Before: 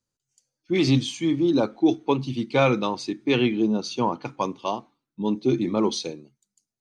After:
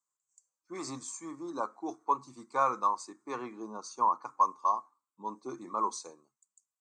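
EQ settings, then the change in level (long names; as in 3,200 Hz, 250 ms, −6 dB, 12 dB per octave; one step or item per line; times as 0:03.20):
pair of resonant band-passes 2,900 Hz, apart 2.8 octaves
+7.0 dB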